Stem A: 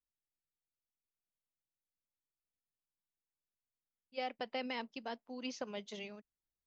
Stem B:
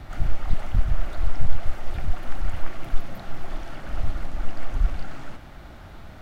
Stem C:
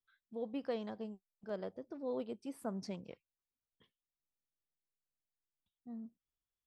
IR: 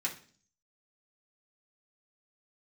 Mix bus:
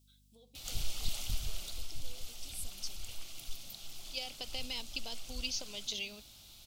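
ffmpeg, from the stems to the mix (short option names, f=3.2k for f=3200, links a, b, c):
-filter_complex "[0:a]lowpass=f=1.7k:p=1,acompressor=threshold=-47dB:ratio=6,volume=0.5dB[a];[1:a]adelay=550,volume=-15dB,afade=t=out:st=1.27:d=0.62:silence=0.446684[b];[2:a]acompressor=threshold=-48dB:ratio=6,volume=-12.5dB,asplit=2[c][d];[d]volume=-9.5dB[e];[3:a]atrim=start_sample=2205[f];[e][f]afir=irnorm=-1:irlink=0[g];[a][b][c][g]amix=inputs=4:normalize=0,aexciter=amount=12.3:drive=8.8:freq=2.8k,aeval=exprs='val(0)+0.000501*(sin(2*PI*50*n/s)+sin(2*PI*2*50*n/s)/2+sin(2*PI*3*50*n/s)/3+sin(2*PI*4*50*n/s)/4+sin(2*PI*5*50*n/s)/5)':c=same"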